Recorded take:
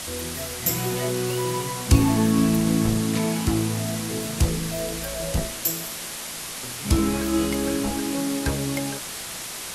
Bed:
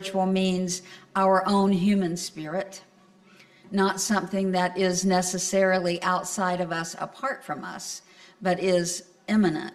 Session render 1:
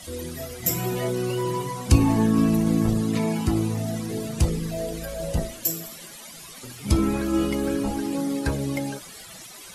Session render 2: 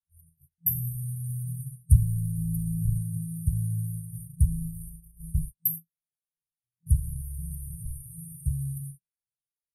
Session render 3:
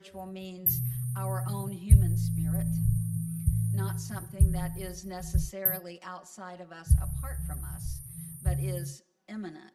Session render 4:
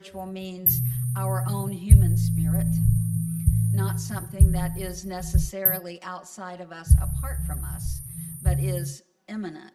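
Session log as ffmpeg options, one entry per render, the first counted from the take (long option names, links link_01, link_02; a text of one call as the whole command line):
ffmpeg -i in.wav -af "afftdn=noise_reduction=15:noise_floor=-34" out.wav
ffmpeg -i in.wav -af "agate=range=-53dB:threshold=-29dB:ratio=16:detection=peak,afftfilt=real='re*(1-between(b*sr/4096,170,8600))':imag='im*(1-between(b*sr/4096,170,8600))':win_size=4096:overlap=0.75" out.wav
ffmpeg -i in.wav -i bed.wav -filter_complex "[1:a]volume=-17.5dB[link_01];[0:a][link_01]amix=inputs=2:normalize=0" out.wav
ffmpeg -i in.wav -af "volume=6dB,alimiter=limit=-2dB:level=0:latency=1" out.wav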